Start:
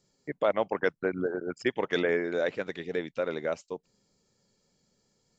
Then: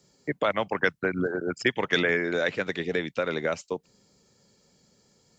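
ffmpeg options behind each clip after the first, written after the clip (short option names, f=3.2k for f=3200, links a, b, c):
-filter_complex "[0:a]highpass=43,acrossover=split=190|1200[a][b][c];[b]acompressor=threshold=-35dB:ratio=6[d];[a][d][c]amix=inputs=3:normalize=0,volume=8.5dB"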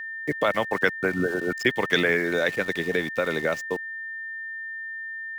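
-af "aeval=exprs='val(0)*gte(abs(val(0)),0.01)':c=same,aeval=exprs='val(0)+0.02*sin(2*PI*1800*n/s)':c=same,volume=2dB"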